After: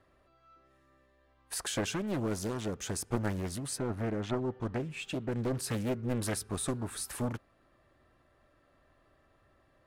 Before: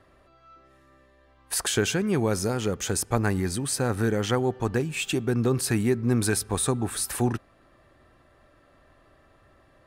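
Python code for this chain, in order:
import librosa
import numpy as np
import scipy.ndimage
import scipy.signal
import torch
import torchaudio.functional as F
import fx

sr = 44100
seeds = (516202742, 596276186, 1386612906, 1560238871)

y = fx.lowpass(x, sr, hz=fx.line((3.76, 2000.0), (5.32, 3900.0)), slope=6, at=(3.76, 5.32), fade=0.02)
y = fx.doppler_dist(y, sr, depth_ms=0.96)
y = F.gain(torch.from_numpy(y), -8.5).numpy()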